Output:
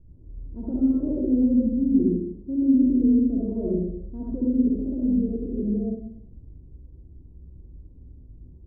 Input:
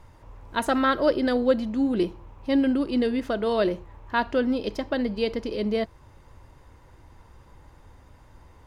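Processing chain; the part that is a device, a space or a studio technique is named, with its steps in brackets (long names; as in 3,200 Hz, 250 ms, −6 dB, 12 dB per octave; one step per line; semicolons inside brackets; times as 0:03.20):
0:02.10–0:02.74: high-pass filter 130 Hz 6 dB per octave
next room (low-pass filter 330 Hz 24 dB per octave; convolution reverb RT60 0.75 s, pre-delay 55 ms, DRR −6 dB)
level −1.5 dB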